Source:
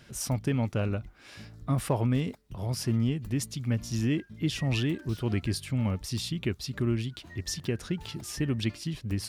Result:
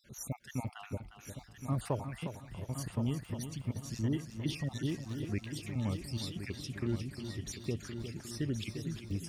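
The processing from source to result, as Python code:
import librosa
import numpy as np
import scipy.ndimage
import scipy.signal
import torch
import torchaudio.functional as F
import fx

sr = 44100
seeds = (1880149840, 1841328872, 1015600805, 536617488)

y = fx.spec_dropout(x, sr, seeds[0], share_pct=49)
y = fx.echo_heads(y, sr, ms=356, heads='first and third', feedback_pct=57, wet_db=-9.5)
y = y * librosa.db_to_amplitude(-6.0)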